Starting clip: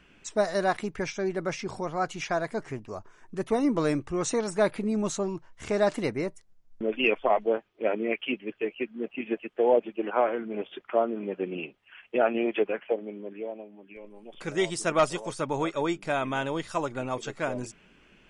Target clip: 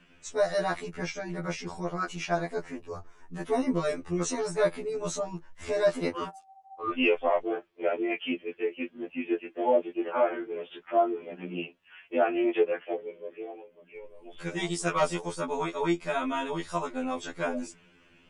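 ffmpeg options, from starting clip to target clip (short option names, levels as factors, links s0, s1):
-filter_complex "[0:a]flanger=delay=1.1:depth=3.5:regen=-83:speed=1.1:shape=sinusoidal,asplit=3[s0][s1][s2];[s0]afade=t=out:st=6.12:d=0.02[s3];[s1]aeval=exprs='val(0)*sin(2*PI*770*n/s)':c=same,afade=t=in:st=6.12:d=0.02,afade=t=out:st=6.9:d=0.02[s4];[s2]afade=t=in:st=6.9:d=0.02[s5];[s3][s4][s5]amix=inputs=3:normalize=0,afftfilt=real='re*2*eq(mod(b,4),0)':imag='im*2*eq(mod(b,4),0)':win_size=2048:overlap=0.75,volume=1.88"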